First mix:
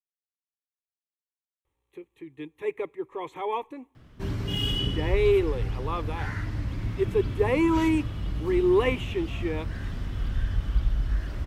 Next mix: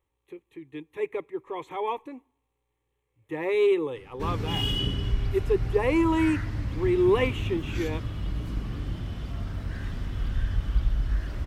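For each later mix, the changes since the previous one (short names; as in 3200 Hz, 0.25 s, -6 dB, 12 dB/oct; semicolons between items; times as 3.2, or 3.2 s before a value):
speech: entry -1.65 s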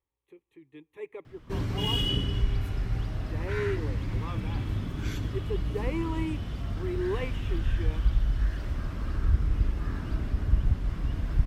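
speech -10.0 dB; background: entry -2.70 s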